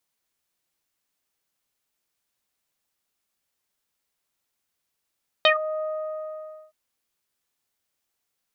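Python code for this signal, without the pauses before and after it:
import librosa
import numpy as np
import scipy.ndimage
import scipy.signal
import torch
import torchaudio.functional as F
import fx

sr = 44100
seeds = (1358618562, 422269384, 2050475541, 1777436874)

y = fx.sub_voice(sr, note=75, wave='saw', cutoff_hz=980.0, q=5.4, env_oct=2.0, env_s=0.13, attack_ms=1.4, decay_s=0.1, sustain_db=-13.5, release_s=0.9, note_s=0.37, slope=24)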